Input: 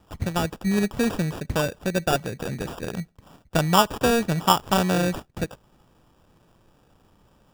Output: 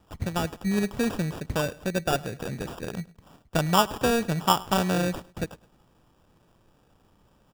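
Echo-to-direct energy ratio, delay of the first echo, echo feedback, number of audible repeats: −21.0 dB, 105 ms, 33%, 2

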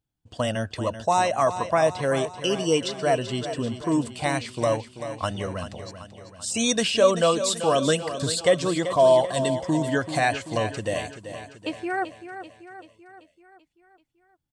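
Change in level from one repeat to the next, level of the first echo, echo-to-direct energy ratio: −5.0 dB, −11.0 dB, −9.5 dB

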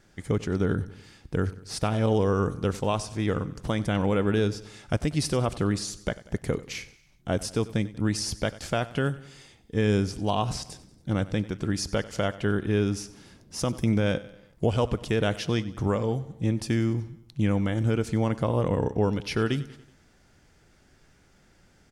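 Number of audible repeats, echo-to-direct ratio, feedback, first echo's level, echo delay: 3, −16.5 dB, 52%, −18.0 dB, 94 ms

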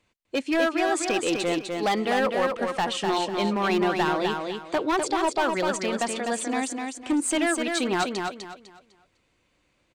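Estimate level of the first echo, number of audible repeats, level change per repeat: −4.5 dB, 3, −11.0 dB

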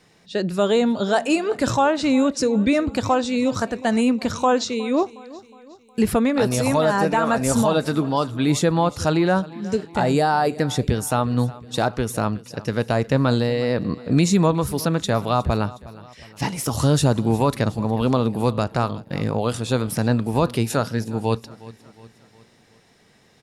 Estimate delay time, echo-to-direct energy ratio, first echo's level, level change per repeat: 363 ms, −18.5 dB, −19.5 dB, −6.0 dB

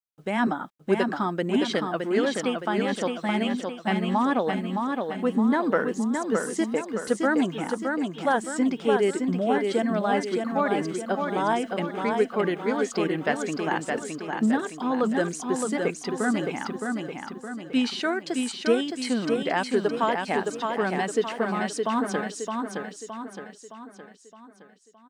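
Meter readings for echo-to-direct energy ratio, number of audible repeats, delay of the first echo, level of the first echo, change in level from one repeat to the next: −3.5 dB, 5, 616 ms, −4.5 dB, −6.5 dB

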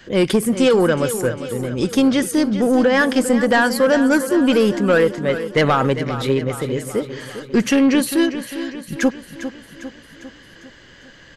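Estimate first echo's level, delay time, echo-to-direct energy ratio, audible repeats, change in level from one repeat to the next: −11.5 dB, 401 ms, −10.0 dB, 5, −5.0 dB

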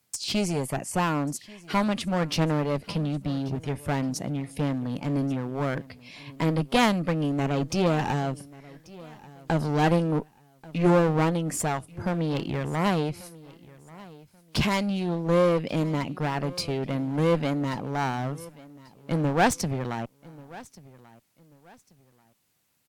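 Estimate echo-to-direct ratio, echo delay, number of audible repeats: −20.5 dB, 1,137 ms, 2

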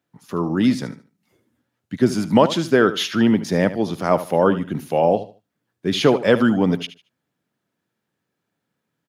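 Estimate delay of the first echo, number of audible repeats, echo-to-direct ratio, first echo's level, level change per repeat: 75 ms, 2, −13.5 dB, −14.0 dB, −12.0 dB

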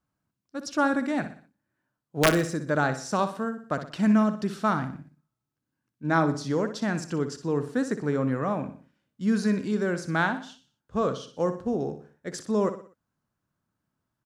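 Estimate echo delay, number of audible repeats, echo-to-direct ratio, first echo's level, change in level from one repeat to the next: 61 ms, 4, −10.0 dB, −11.0 dB, −7.5 dB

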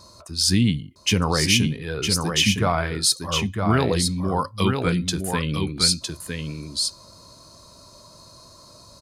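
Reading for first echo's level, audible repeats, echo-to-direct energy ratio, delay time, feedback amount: −5.0 dB, 1, −5.0 dB, 959 ms, repeats not evenly spaced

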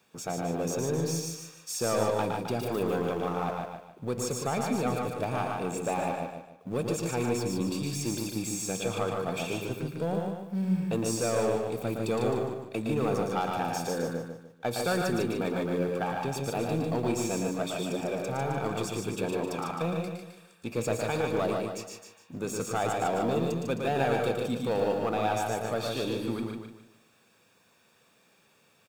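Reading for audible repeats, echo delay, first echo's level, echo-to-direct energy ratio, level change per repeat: 8, 113 ms, −5.0 dB, −1.0 dB, repeats not evenly spaced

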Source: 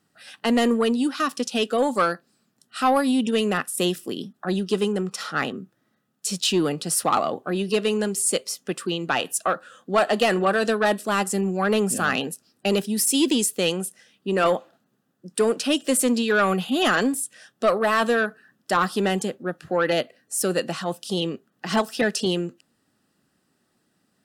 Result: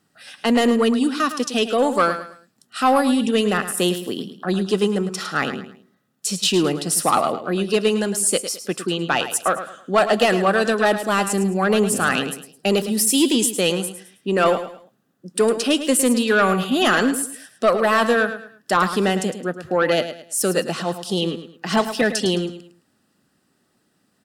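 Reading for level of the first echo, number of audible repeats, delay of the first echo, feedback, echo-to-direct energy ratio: −11.0 dB, 3, 107 ms, 31%, −10.5 dB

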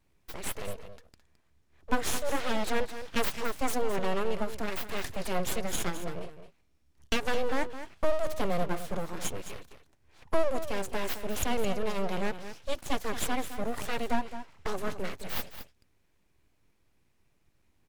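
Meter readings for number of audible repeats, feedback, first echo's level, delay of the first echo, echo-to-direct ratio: 1, repeats not evenly spaced, −11.5 dB, 214 ms, −11.5 dB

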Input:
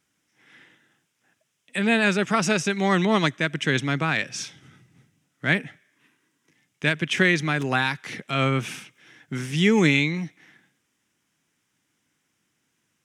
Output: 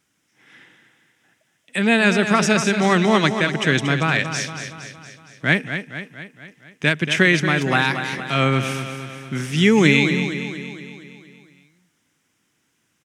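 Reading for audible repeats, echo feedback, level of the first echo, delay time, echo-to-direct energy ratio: 6, 56%, −9.0 dB, 232 ms, −7.5 dB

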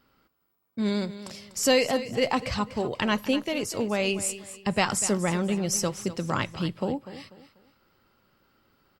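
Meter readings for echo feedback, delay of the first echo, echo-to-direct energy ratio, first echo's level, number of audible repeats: 33%, 245 ms, −13.5 dB, −14.0 dB, 3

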